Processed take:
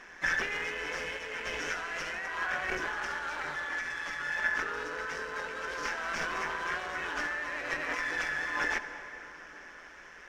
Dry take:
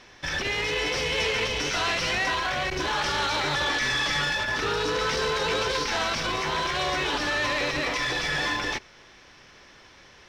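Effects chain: tape echo 0.239 s, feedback 70%, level -19 dB, low-pass 1900 Hz; negative-ratio compressor -30 dBFS, ratio -0.5; bell 96 Hz -4.5 dB 2.3 oct; AM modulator 170 Hz, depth 35%; harmoniser +3 st -11 dB; fifteen-band EQ 100 Hz -11 dB, 1600 Hz +10 dB, 4000 Hz -11 dB; reverb RT60 4.0 s, pre-delay 57 ms, DRR 11.5 dB; gain -4.5 dB

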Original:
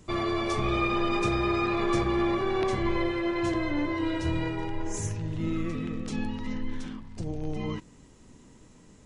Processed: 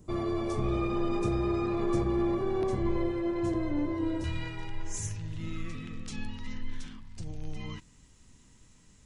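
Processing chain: bell 2600 Hz -13 dB 3 oct, from 4.24 s 430 Hz

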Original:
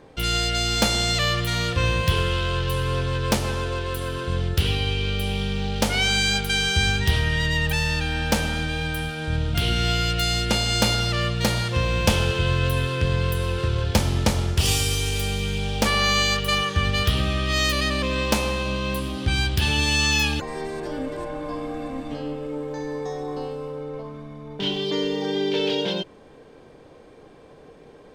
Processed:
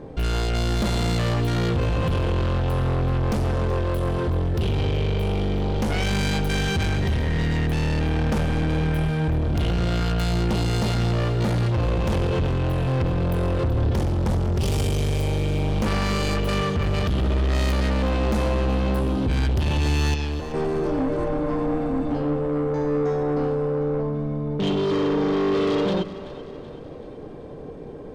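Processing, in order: tilt shelf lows +8.5 dB; limiter -10 dBFS, peak gain reduction 10.5 dB; soft clip -24 dBFS, distortion -7 dB; 20.14–20.54 ladder low-pass 6500 Hz, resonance 30%; split-band echo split 430 Hz, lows 0.108 s, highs 0.38 s, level -15 dB; gain +4.5 dB

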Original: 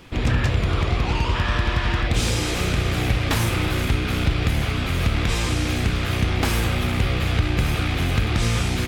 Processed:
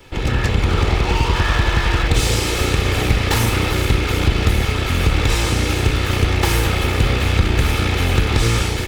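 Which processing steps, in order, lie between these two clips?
minimum comb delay 2.3 ms; AGC gain up to 3.5 dB; gain +2.5 dB

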